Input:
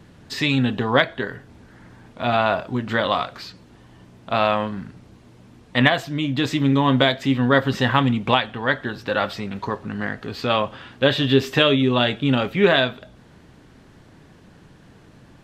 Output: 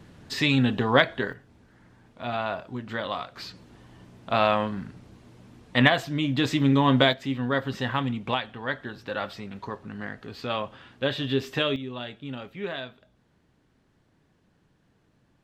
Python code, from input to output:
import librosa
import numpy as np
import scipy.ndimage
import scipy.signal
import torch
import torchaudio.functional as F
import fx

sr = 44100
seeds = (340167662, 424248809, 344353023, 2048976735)

y = fx.gain(x, sr, db=fx.steps((0.0, -2.0), (1.33, -10.0), (3.37, -2.5), (7.13, -9.0), (11.76, -17.0)))